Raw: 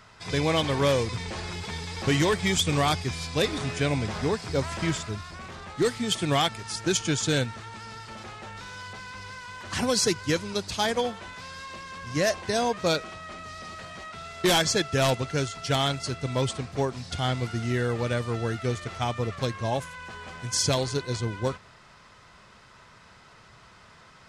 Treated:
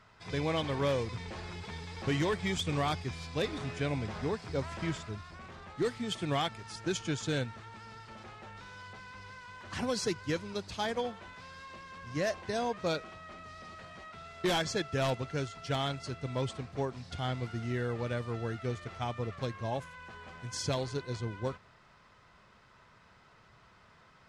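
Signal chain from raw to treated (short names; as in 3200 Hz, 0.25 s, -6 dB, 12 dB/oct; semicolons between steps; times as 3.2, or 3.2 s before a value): high shelf 5300 Hz -10.5 dB; gain -7 dB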